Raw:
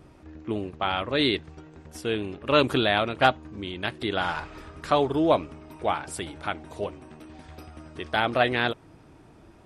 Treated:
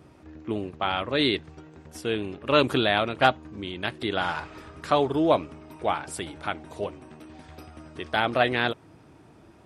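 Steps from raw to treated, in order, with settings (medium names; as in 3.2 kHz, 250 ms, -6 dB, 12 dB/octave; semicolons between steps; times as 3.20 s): high-pass 71 Hz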